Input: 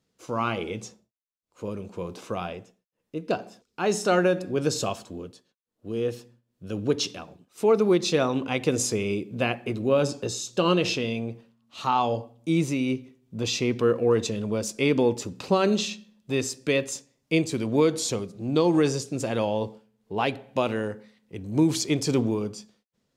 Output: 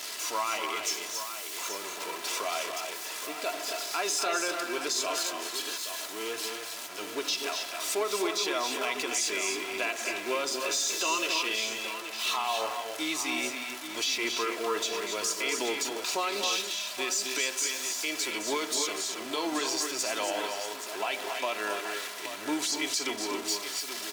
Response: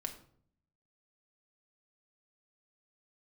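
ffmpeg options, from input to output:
-af "aeval=exprs='val(0)+0.5*0.0224*sgn(val(0))':c=same,highpass=780,equalizer=f=6000:w=0.31:g=4.5,aecho=1:1:2.9:0.57,alimiter=limit=0.0944:level=0:latency=1:release=106,aecho=1:1:235|265|794:0.335|0.473|0.316,asetrate=42336,aresample=44100"

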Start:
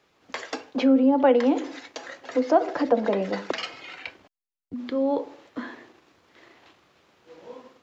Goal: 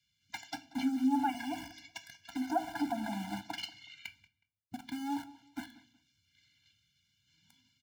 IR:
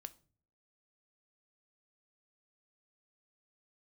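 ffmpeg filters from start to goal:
-filter_complex "[0:a]acrossover=split=150|2300[s0][s1][s2];[s1]aeval=exprs='val(0)*gte(abs(val(0)),0.0299)':c=same[s3];[s0][s3][s2]amix=inputs=3:normalize=0,asettb=1/sr,asplit=3[s4][s5][s6];[s4]atrim=end=1.294[s7];[s5]atrim=start=1.29:end=2.28,asetpts=PTS-STARTPTS,afade=t=in:d=0.004:c=qsin,afade=t=out:st=0.986:d=0.004:c=qsin,aecho=1:1:1.8:0.67,atrim=end_sample=43659[s8];[s6]atrim=start=2.276[s9];[s7][s8]acrossfade=d=0.004:c1=hsin:c2=qsin[s10];[s10][s9]acrossfade=d=0.004:c1=qsin:c2=hsin,asplit=2[s11][s12];[s12]acompressor=threshold=0.0447:ratio=6,volume=1.33[s13];[s11][s13]amix=inputs=2:normalize=0,highpass=82,asplit=2[s14][s15];[s15]adelay=184,lowpass=f=4200:p=1,volume=0.106,asplit=2[s16][s17];[s17]adelay=184,lowpass=f=4200:p=1,volume=0.23[s18];[s14][s16][s18]amix=inputs=3:normalize=0[s19];[1:a]atrim=start_sample=2205[s20];[s19][s20]afir=irnorm=-1:irlink=0,afftfilt=real='re*eq(mod(floor(b*sr/1024/340),2),0)':imag='im*eq(mod(floor(b*sr/1024/340),2),0)':win_size=1024:overlap=0.75,volume=0.531"

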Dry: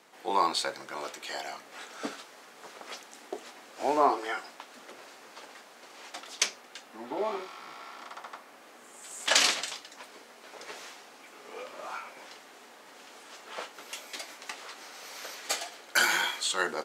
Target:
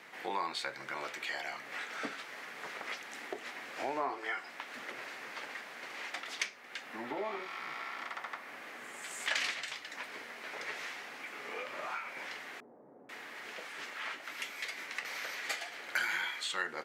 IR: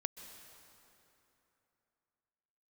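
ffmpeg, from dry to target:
-filter_complex "[0:a]equalizer=f=125:t=o:w=1:g=7,equalizer=f=2000:t=o:w=1:g=11,equalizer=f=8000:t=o:w=1:g=-4,acompressor=threshold=0.01:ratio=2.5,asettb=1/sr,asplit=3[s0][s1][s2];[s0]atrim=end=12.604[s3];[s1]atrim=start=12.6:end=15.05,asetpts=PTS-STARTPTS,afade=t=in:d=0.004:c=qsin,afade=t=out:st=2.446:d=0.004:c=qsin,acrossover=split=680[s4][s5];[s5]adelay=490[s6];[s4][s6]amix=inputs=2:normalize=0,atrim=end_sample=108045[s7];[s2]atrim=start=15.046[s8];[s3][s7]acrossfade=d=0.004:c1=hsin:c2=qsin[s9];[s9][s8]acrossfade=d=0.004:c1=qsin:c2=hsin,volume=1.12"

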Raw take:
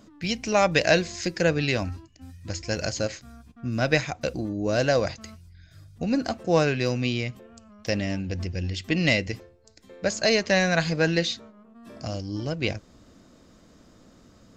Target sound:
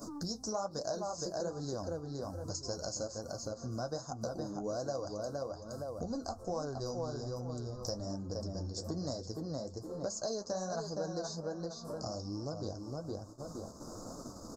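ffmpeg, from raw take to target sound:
-filter_complex "[0:a]asuperstop=centerf=2500:order=8:qfactor=0.67,asplit=2[s0][s1];[s1]adelay=466,lowpass=f=3300:p=1,volume=0.562,asplit=2[s2][s3];[s3]adelay=466,lowpass=f=3300:p=1,volume=0.21,asplit=2[s4][s5];[s5]adelay=466,lowpass=f=3300:p=1,volume=0.21[s6];[s0][s2][s4][s6]amix=inputs=4:normalize=0,flanger=delay=6.5:depth=9:regen=-36:speed=1.2:shape=triangular,acompressor=mode=upward:threshold=0.0126:ratio=2.5,lowshelf=f=460:g=-9.5,agate=range=0.0891:threshold=0.002:ratio=16:detection=peak,asplit=3[s7][s8][s9];[s7]afade=t=out:st=6.02:d=0.02[s10];[s8]asubboost=boost=5:cutoff=81,afade=t=in:st=6.02:d=0.02,afade=t=out:st=8.03:d=0.02[s11];[s9]afade=t=in:st=8.03:d=0.02[s12];[s10][s11][s12]amix=inputs=3:normalize=0,acompressor=threshold=0.00398:ratio=4,volume=3.16"

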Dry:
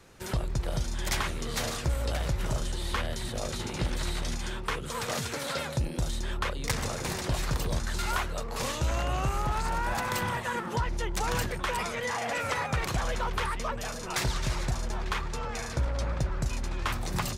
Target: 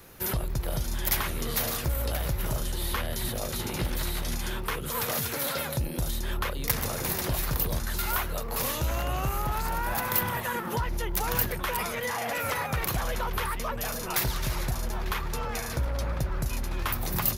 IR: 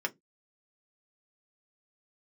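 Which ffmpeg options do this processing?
-af "alimiter=level_in=1.12:limit=0.0631:level=0:latency=1:release=180,volume=0.891,aexciter=amount=10.6:drive=2.9:freq=11000,volume=1.5"

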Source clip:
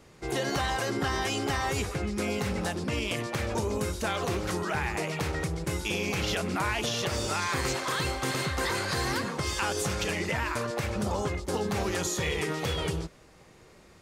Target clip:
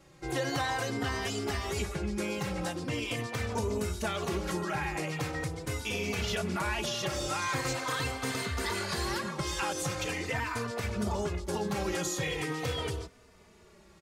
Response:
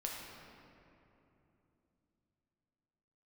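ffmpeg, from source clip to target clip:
-filter_complex "[0:a]asplit=2[s0][s1];[s1]adelay=3.2,afreqshift=-0.42[s2];[s0][s2]amix=inputs=2:normalize=1"

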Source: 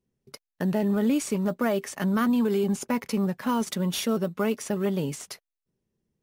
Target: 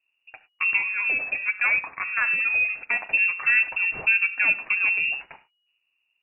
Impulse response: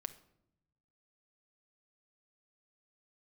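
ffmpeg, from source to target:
-filter_complex "[0:a]asettb=1/sr,asplit=3[s0][s1][s2];[s0]atrim=end=0.774[s3];[s1]atrim=start=0.77:end=3.01,asetpts=PTS-STARTPTS,afade=t=in:d=0.004:c=qsin,afade=t=out:st=2.236:d=0.004:c=qsin,highpass=f=300:w=0.5412,highpass=f=300:w=1.3066[s4];[s2]atrim=start=3.006[s5];[s3][s4]acrossfade=d=0.004:c1=hsin:c2=qsin[s6];[s6][s5]acrossfade=d=0.004:c1=qsin:c2=hsin[s7];[1:a]atrim=start_sample=2205,atrim=end_sample=3528,asetrate=29988,aresample=44100[s8];[s7][s8]afir=irnorm=-1:irlink=0,lowpass=f=2500:t=q:w=0.5098,lowpass=f=2500:t=q:w=0.6013,lowpass=f=2500:t=q:w=0.9,lowpass=f=2500:t=q:w=2.563,afreqshift=-2900,volume=1.78"

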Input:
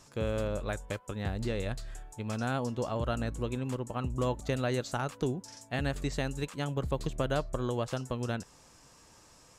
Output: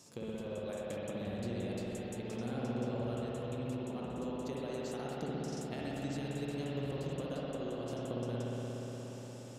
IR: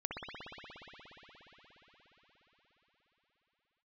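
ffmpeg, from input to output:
-filter_complex "[0:a]highpass=160,equalizer=f=1400:w=0.65:g=-11.5,acompressor=threshold=0.00708:ratio=6[s0];[1:a]atrim=start_sample=2205[s1];[s0][s1]afir=irnorm=-1:irlink=0,volume=1.78"

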